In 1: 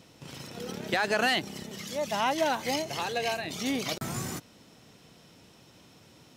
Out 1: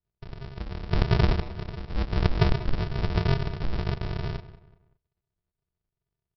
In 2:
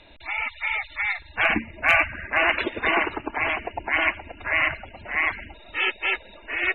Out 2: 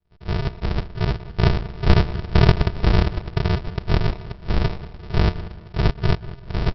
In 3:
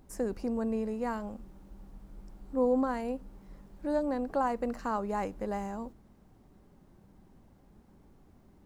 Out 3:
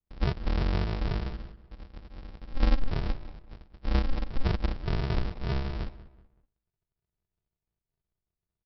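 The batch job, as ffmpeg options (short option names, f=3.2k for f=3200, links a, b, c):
-filter_complex "[0:a]agate=range=-35dB:threshold=-48dB:ratio=16:detection=peak,aresample=11025,acrusher=samples=41:mix=1:aa=0.000001,aresample=44100,asplit=2[a][b];[b]adelay=189,lowpass=f=2.6k:p=1,volume=-16dB,asplit=2[c][d];[d]adelay=189,lowpass=f=2.6k:p=1,volume=0.36,asplit=2[e][f];[f]adelay=189,lowpass=f=2.6k:p=1,volume=0.36[g];[a][c][e][g]amix=inputs=4:normalize=0,volume=5.5dB"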